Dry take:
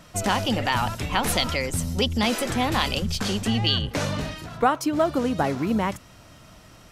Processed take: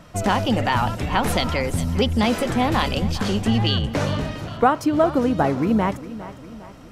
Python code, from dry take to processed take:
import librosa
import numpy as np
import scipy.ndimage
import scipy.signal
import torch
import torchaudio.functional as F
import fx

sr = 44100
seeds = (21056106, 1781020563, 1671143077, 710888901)

y = fx.high_shelf(x, sr, hz=2300.0, db=-9.0)
y = fx.echo_feedback(y, sr, ms=406, feedback_pct=49, wet_db=-15.5)
y = y * librosa.db_to_amplitude(4.5)